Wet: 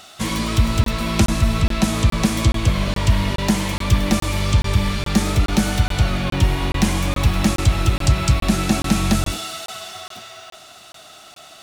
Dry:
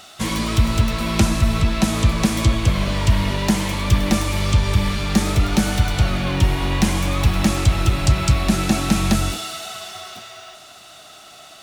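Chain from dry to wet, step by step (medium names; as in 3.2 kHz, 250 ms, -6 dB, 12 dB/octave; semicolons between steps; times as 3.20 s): crackling interface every 0.42 s, samples 1024, zero, from 0.84 s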